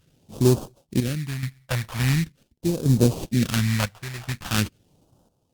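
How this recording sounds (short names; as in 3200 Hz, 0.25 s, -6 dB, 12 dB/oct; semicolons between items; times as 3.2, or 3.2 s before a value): aliases and images of a low sample rate 2100 Hz, jitter 20%; chopped level 0.7 Hz, depth 65%, duty 70%; phasing stages 2, 0.43 Hz, lowest notch 270–1900 Hz; Opus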